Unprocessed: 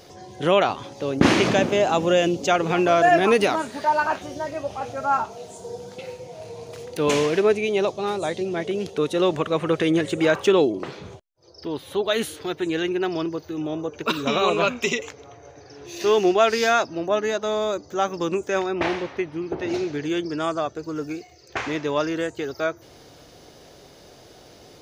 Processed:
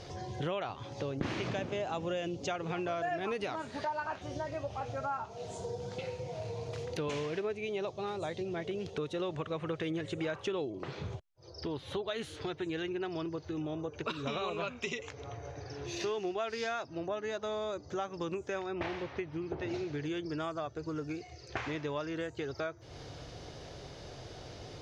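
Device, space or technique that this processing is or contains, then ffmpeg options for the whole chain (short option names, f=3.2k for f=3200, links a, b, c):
jukebox: -af "lowpass=5.9k,lowshelf=f=160:t=q:w=1.5:g=6,acompressor=threshold=-36dB:ratio=4"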